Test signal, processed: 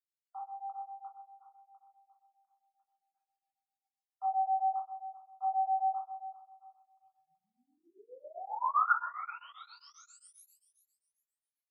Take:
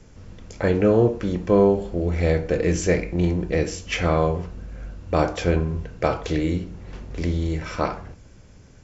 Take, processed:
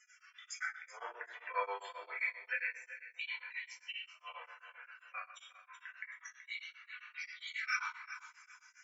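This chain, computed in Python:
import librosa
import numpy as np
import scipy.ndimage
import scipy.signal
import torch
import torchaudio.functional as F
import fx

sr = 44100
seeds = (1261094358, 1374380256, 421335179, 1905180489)

p1 = scipy.signal.sosfilt(scipy.signal.butter(4, 1300.0, 'highpass', fs=sr, output='sos'), x)
p2 = fx.gate_flip(p1, sr, shuts_db=-25.0, range_db=-36)
p3 = fx.spec_topn(p2, sr, count=32)
p4 = p3 + fx.echo_feedback(p3, sr, ms=377, feedback_pct=26, wet_db=-13.0, dry=0)
p5 = fx.room_shoebox(p4, sr, seeds[0], volume_m3=140.0, walls='mixed', distance_m=1.9)
y = p5 * np.abs(np.cos(np.pi * 7.5 * np.arange(len(p5)) / sr))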